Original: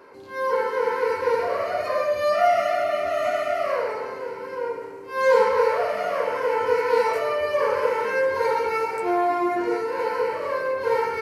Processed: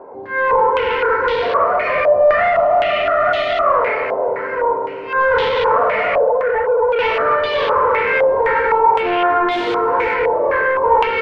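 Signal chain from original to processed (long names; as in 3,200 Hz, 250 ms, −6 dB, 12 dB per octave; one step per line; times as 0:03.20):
0:06.18–0:06.99: expanding power law on the bin magnitudes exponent 3.8
on a send at −10.5 dB: convolution reverb RT60 3.6 s, pre-delay 4 ms
0:09.51–0:10.14: on the sum: log-companded quantiser 4 bits
in parallel at −2.5 dB: brickwall limiter −14.5 dBFS, peak gain reduction 7.5 dB
on the sum: soft clipping −17.5 dBFS, distortion −11 dB
feedback delay with all-pass diffusion 487 ms, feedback 42%, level −16 dB
low-pass on a step sequencer 3.9 Hz 750–3,500 Hz
level +3 dB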